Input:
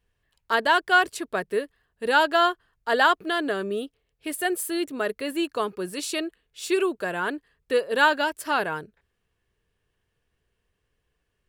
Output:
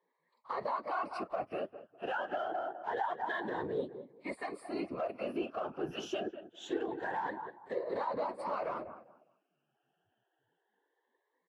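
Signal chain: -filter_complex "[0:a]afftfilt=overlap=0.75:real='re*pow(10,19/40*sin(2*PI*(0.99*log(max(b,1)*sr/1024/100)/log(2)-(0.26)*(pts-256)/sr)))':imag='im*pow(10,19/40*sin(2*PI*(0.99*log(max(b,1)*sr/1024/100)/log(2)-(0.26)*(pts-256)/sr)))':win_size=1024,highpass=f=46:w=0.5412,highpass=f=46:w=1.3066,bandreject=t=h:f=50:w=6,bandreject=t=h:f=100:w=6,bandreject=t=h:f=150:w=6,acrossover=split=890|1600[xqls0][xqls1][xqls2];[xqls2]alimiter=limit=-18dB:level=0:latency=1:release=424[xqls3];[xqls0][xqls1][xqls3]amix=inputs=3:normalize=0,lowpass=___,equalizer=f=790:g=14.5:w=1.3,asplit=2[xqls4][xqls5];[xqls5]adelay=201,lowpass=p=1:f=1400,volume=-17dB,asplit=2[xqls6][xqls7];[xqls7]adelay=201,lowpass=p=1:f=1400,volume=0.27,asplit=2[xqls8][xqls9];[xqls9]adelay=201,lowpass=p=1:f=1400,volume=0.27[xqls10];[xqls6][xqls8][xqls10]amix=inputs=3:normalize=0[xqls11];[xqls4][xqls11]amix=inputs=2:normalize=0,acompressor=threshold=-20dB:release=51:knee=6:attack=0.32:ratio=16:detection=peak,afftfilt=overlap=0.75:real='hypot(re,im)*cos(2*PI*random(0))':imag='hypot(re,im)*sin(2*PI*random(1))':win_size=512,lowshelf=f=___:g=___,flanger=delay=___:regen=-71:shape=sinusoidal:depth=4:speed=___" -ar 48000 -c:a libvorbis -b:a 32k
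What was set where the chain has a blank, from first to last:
3000, 66, -7, 1.7, 1.6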